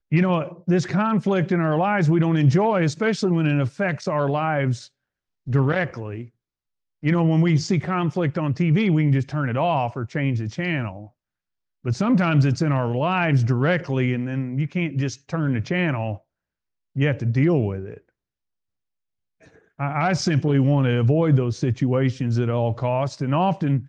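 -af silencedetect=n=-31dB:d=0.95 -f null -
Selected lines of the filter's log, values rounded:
silence_start: 17.97
silence_end: 19.80 | silence_duration: 1.83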